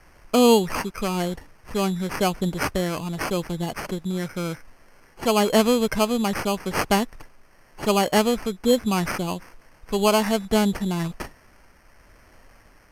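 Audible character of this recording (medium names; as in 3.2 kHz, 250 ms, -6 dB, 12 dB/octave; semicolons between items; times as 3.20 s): a quantiser's noise floor 10-bit, dither triangular; tremolo triangle 0.91 Hz, depth 30%; aliases and images of a low sample rate 3.7 kHz, jitter 0%; Vorbis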